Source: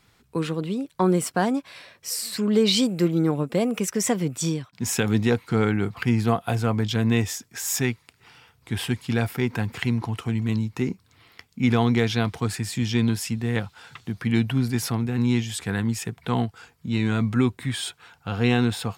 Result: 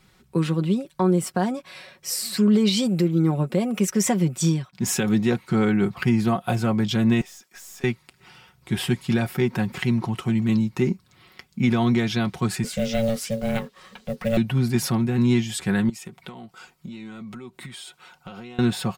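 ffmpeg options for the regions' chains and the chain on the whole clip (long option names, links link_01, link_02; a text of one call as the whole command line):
ffmpeg -i in.wav -filter_complex "[0:a]asettb=1/sr,asplit=3[link_01][link_02][link_03];[link_01]atrim=end=7.214[link_04];[link_02]atrim=start=7.21:end=7.84,asetpts=PTS-STARTPTS,afade=type=in:duration=0.004:curve=qsin,afade=type=out:start_time=0.626:duration=0.004:curve=qsin,highpass=600,acompressor=threshold=-38dB:ratio=4:attack=3.2:release=140:knee=1:detection=peak,aeval=exprs='(tanh(126*val(0)+0.15)-tanh(0.15))/126':channel_layout=same[link_05];[link_03]atrim=start=7.836[link_06];[link_04][link_05]acrossfade=duration=0.004:curve1=hsin:curve2=qsin[link_07];[link_07][link_06]acrossfade=duration=0.004:curve1=qsin:curve2=hsin,asettb=1/sr,asplit=3[link_08][link_09][link_10];[link_08]atrim=end=12.644[link_11];[link_09]atrim=start=12.64:end=14.37,asetpts=PTS-STARTPTS,afade=type=in:duration=0.004:curve=qsin,afade=type=out:start_time=1.726:duration=0.004:curve=qsin,aeval=exprs='val(0)*sin(2*PI*340*n/s)':channel_layout=same,acrusher=bits=6:mode=log:mix=0:aa=0.000001[link_12];[link_10]atrim=start=14.366[link_13];[link_11][link_12]acrossfade=duration=0.004:curve1=hsin:curve2=qsin[link_14];[link_14][link_13]acrossfade=duration=0.004:curve1=qsin:curve2=hsin,asettb=1/sr,asplit=3[link_15][link_16][link_17];[link_15]atrim=end=15.894[link_18];[link_16]atrim=start=15.89:end=18.59,asetpts=PTS-STARTPTS,afade=type=in:duration=0.004:curve=qsin,afade=type=out:start_time=2.696:duration=0.004:curve=qsin,equalizer=frequency=70:width_type=o:width=2.4:gain=-12.5,bandreject=frequency=1700:width=9.8,acompressor=threshold=-37dB:ratio=16:attack=3.2:release=140:knee=1:detection=peak[link_19];[link_17]atrim=start=18.586[link_20];[link_18][link_19]acrossfade=duration=0.004:curve1=hsin:curve2=qsin[link_21];[link_21][link_20]acrossfade=duration=0.004:curve1=qsin:curve2=hsin,lowshelf=frequency=420:gain=4,aecho=1:1:5.4:0.66,alimiter=limit=-11dB:level=0:latency=1:release=297" out.wav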